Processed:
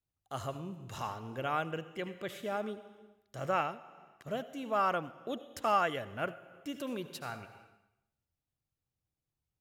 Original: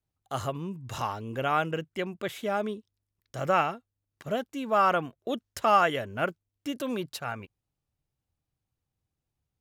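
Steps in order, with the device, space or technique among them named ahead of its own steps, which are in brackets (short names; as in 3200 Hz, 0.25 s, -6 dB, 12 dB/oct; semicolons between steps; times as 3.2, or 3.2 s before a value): compressed reverb return (on a send at -4.5 dB: reverb RT60 0.85 s, pre-delay 69 ms + compressor 6:1, threshold -36 dBFS, peak gain reduction 18 dB); on the sum: gain -7 dB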